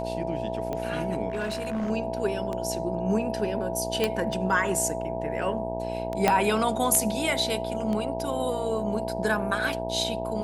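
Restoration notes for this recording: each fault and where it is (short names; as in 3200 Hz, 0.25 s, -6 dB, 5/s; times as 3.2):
buzz 60 Hz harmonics 16 -34 dBFS
tick 33 1/3 rpm -19 dBFS
tone 660 Hz -33 dBFS
1.3–1.91 clipped -25.5 dBFS
4.04 pop -10 dBFS
6.28 pop -6 dBFS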